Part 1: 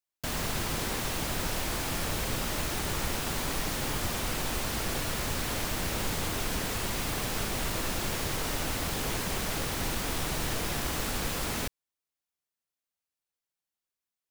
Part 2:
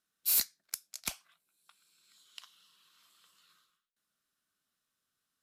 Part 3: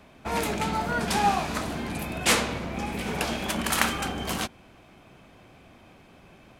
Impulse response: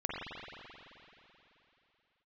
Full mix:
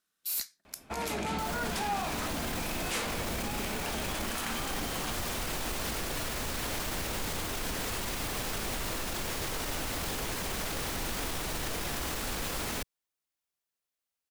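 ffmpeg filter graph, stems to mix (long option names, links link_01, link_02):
-filter_complex "[0:a]adelay=1150,volume=1dB[link_01];[1:a]volume=2.5dB[link_02];[2:a]dynaudnorm=framelen=180:gausssize=9:maxgain=11.5dB,asoftclip=type=hard:threshold=-11dB,adelay=650,volume=-4.5dB[link_03];[link_01][link_02][link_03]amix=inputs=3:normalize=0,equalizer=frequency=130:width_type=o:width=1.4:gain=-3.5,alimiter=level_in=1dB:limit=-24dB:level=0:latency=1:release=28,volume=-1dB"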